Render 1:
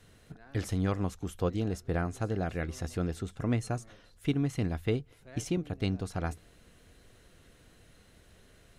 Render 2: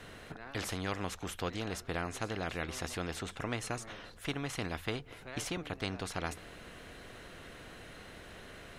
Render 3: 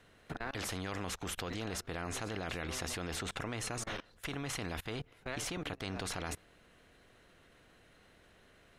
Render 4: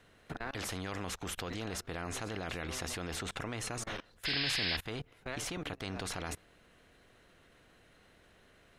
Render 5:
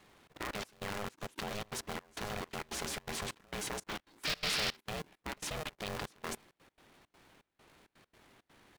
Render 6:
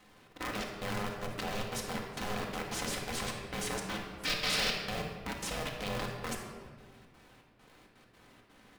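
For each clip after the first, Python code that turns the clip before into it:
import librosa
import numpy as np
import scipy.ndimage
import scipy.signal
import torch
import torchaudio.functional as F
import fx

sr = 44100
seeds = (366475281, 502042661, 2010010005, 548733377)

y1 = fx.bass_treble(x, sr, bass_db=-3, treble_db=-10)
y1 = fx.spectral_comp(y1, sr, ratio=2.0)
y1 = y1 * 10.0 ** (-2.0 / 20.0)
y2 = fx.level_steps(y1, sr, step_db=24)
y2 = y2 * 10.0 ** (9.0 / 20.0)
y3 = fx.spec_paint(y2, sr, seeds[0], shape='noise', start_s=4.25, length_s=0.52, low_hz=1500.0, high_hz=5300.0, level_db=-34.0)
y4 = fx.step_gate(y3, sr, bpm=166, pattern='xxx.xxx..xxx.x.', floor_db=-24.0, edge_ms=4.5)
y4 = y4 * np.sign(np.sin(2.0 * np.pi * 310.0 * np.arange(len(y4)) / sr))
y5 = fx.room_shoebox(y4, sr, seeds[1], volume_m3=1700.0, walls='mixed', distance_m=2.0)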